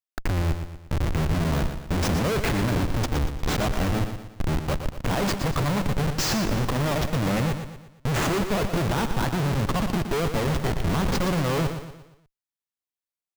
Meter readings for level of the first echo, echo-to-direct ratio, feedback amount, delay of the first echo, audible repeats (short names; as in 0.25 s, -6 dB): -8.5 dB, -7.5 dB, 44%, 0.118 s, 4